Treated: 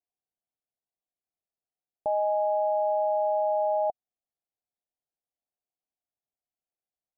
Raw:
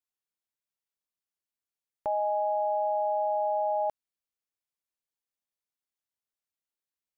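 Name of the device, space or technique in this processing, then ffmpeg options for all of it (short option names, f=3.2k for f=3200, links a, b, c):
under water: -af "lowpass=f=750:w=0.5412,lowpass=f=750:w=1.3066,equalizer=f=730:t=o:w=0.37:g=11"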